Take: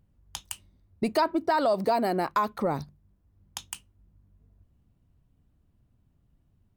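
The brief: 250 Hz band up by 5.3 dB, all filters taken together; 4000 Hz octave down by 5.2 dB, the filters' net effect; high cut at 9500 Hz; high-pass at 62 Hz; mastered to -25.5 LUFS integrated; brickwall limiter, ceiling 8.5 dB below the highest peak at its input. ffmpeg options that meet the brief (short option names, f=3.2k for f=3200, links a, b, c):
-af "highpass=62,lowpass=9.5k,equalizer=f=250:t=o:g=7,equalizer=f=4k:t=o:g=-6.5,volume=4.5dB,alimiter=limit=-15.5dB:level=0:latency=1"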